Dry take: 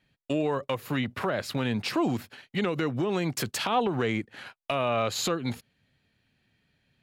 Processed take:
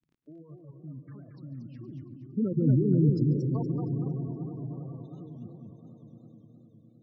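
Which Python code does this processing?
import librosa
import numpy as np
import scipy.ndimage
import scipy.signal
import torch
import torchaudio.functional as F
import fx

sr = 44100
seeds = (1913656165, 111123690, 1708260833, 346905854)

p1 = fx.spec_quant(x, sr, step_db=15)
p2 = fx.doppler_pass(p1, sr, speed_mps=26, closest_m=3.3, pass_at_s=2.86)
p3 = fx.level_steps(p2, sr, step_db=20)
p4 = fx.peak_eq(p3, sr, hz=140.0, db=9.0, octaves=0.48)
p5 = fx.dmg_crackle(p4, sr, seeds[0], per_s=20.0, level_db=-54.0)
p6 = p5 + fx.echo_swell(p5, sr, ms=102, loudest=5, wet_db=-13.0, dry=0)
p7 = fx.spec_gate(p6, sr, threshold_db=-10, keep='strong')
p8 = fx.lowpass(p7, sr, hz=2000.0, slope=6)
p9 = fx.low_shelf_res(p8, sr, hz=440.0, db=11.0, q=1.5)
p10 = p9 + 10.0 ** (-18.5 / 20.0) * np.pad(p9, (int(143 * sr / 1000.0), 0))[:len(p9)]
p11 = fx.echo_warbled(p10, sr, ms=232, feedback_pct=40, rate_hz=2.8, cents=189, wet_db=-5.0)
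y = p11 * librosa.db_to_amplitude(3.0)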